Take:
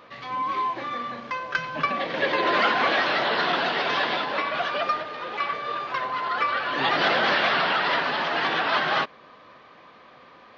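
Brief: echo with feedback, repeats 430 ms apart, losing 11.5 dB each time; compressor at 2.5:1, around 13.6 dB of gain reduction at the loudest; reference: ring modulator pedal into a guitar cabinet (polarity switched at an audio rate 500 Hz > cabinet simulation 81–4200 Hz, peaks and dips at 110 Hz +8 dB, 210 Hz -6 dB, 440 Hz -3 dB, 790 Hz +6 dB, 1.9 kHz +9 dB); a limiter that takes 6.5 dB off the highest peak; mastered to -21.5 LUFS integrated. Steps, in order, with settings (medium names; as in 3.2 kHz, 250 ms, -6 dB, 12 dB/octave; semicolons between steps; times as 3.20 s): compression 2.5:1, threshold -40 dBFS; peak limiter -29 dBFS; feedback delay 430 ms, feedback 27%, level -11.5 dB; polarity switched at an audio rate 500 Hz; cabinet simulation 81–4200 Hz, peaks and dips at 110 Hz +8 dB, 210 Hz -6 dB, 440 Hz -3 dB, 790 Hz +6 dB, 1.9 kHz +9 dB; trim +13 dB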